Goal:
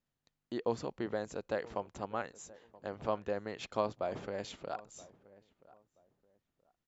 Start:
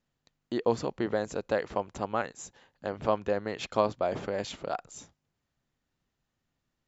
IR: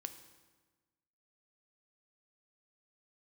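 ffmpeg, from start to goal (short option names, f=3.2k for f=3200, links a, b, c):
-filter_complex "[0:a]asplit=2[a][b];[b]adelay=977,lowpass=f=1.3k:p=1,volume=-20dB,asplit=2[c][d];[d]adelay=977,lowpass=f=1.3k:p=1,volume=0.25[e];[a][c][e]amix=inputs=3:normalize=0,volume=-7dB"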